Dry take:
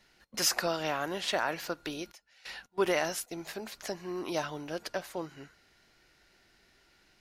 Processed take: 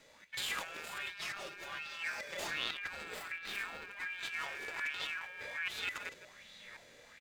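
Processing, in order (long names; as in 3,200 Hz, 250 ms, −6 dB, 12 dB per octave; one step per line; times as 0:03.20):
delay that plays each chunk backwards 677 ms, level −0.5 dB
in parallel at −10 dB: decimation without filtering 37×
on the sum: brickwall limiter −24 dBFS, peak gain reduction 11.5 dB
on a send: single-tap delay 160 ms −17 dB
on the sum: asymmetric clip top −46.5 dBFS
0:00.86–0:02.50: comb filter 4.9 ms, depth 80%
ring modulation 2,000 Hz
harmonic and percussive parts rebalanced percussive −14 dB
compressor whose output falls as the input rises −49 dBFS, ratio −1
0:03.04–0:03.91: parametric band 9,500 Hz −9 dB 2 octaves
auto-filter bell 1.3 Hz 410–3,900 Hz +12 dB
level +3 dB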